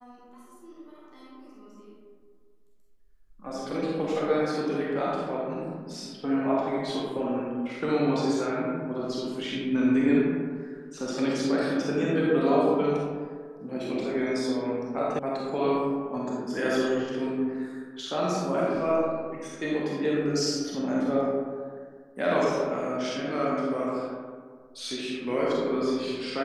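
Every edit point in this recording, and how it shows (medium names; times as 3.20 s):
15.19 s: sound stops dead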